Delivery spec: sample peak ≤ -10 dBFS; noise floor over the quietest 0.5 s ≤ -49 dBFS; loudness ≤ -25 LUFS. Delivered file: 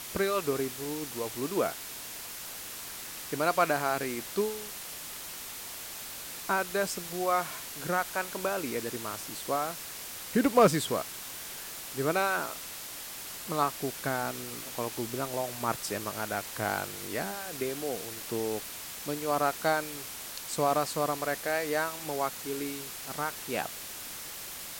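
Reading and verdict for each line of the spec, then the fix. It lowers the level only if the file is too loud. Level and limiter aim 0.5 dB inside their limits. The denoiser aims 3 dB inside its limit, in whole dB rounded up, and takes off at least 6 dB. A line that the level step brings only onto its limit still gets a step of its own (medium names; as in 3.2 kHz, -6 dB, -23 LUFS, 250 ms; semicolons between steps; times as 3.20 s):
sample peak -10.5 dBFS: pass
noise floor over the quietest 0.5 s -42 dBFS: fail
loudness -32.0 LUFS: pass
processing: noise reduction 10 dB, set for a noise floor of -42 dBFS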